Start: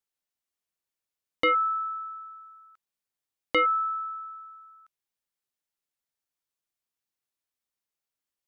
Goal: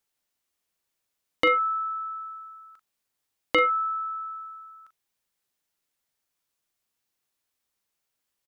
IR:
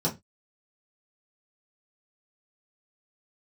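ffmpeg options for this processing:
-filter_complex "[0:a]asplit=2[link_01][link_02];[link_02]acompressor=threshold=-38dB:ratio=6,volume=3dB[link_03];[link_01][link_03]amix=inputs=2:normalize=0,asplit=2[link_04][link_05];[link_05]adelay=40,volume=-11dB[link_06];[link_04][link_06]amix=inputs=2:normalize=0"

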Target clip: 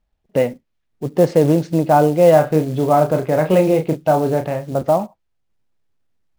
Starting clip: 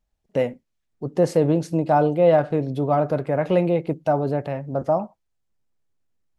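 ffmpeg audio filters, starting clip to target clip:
ffmpeg -i in.wav -filter_complex "[0:a]lowpass=3900,acrusher=bits=6:mode=log:mix=0:aa=0.000001,asettb=1/sr,asplit=3[link_01][link_02][link_03];[link_01]atrim=end=2.334[link_04];[link_02]atrim=start=2.33:end=4.75,asetpts=PTS-STARTPTS,afade=type=in:duration=0.004:curve=qsin,afade=type=out:start_time=2.416:duration=0.004:curve=qsin,asplit=2[link_05][link_06];[link_06]adelay=32,volume=-6.5dB[link_07];[link_05][link_07]amix=inputs=2:normalize=0,atrim=end_sample=106722[link_08];[link_03]atrim=start=4.746[link_09];[link_04][link_08]acrossfade=duration=0.004:curve1=hsin:curve2=qsin[link_10];[link_10][link_09]acrossfade=duration=0.004:curve1=qsin:curve2=hsin,volume=5dB" out.wav

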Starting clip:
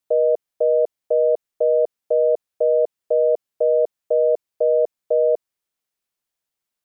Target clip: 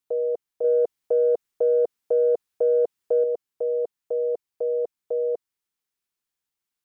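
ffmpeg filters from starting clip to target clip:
ffmpeg -i in.wav -filter_complex "[0:a]equalizer=frequency=610:width=5.9:gain=-15,asettb=1/sr,asplit=3[link_01][link_02][link_03];[link_01]atrim=end=0.644[link_04];[link_02]atrim=start=0.64:end=3.24,asetpts=PTS-STARTPTS,afade=type=in:duration=0.004:curve=qsin,afade=type=out:start_time=2.596:duration=0.004:curve=qsin,acontrast=25[link_05];[link_03]atrim=start=3.236[link_06];[link_04][link_05]acrossfade=duration=0.004:curve1=hsin:curve2=qsin[link_07];[link_07][link_06]acrossfade=duration=0.004:curve1=qsin:curve2=hsin,volume=-2.5dB" out.wav

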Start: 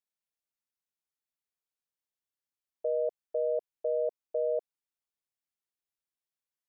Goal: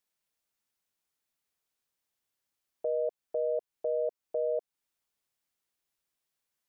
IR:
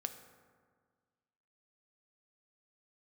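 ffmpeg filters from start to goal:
-af "alimiter=level_in=7.5dB:limit=-24dB:level=0:latency=1:release=272,volume=-7.5dB,volume=8dB"

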